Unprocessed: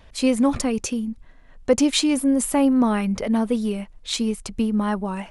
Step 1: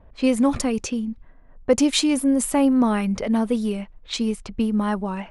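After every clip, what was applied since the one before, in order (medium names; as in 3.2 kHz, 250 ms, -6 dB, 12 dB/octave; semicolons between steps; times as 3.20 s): level-controlled noise filter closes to 880 Hz, open at -19 dBFS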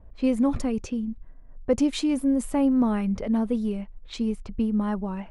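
tilt EQ -2 dB/octave; trim -7 dB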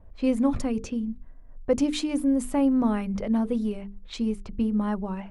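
hum notches 50/100/150/200/250/300/350/400/450 Hz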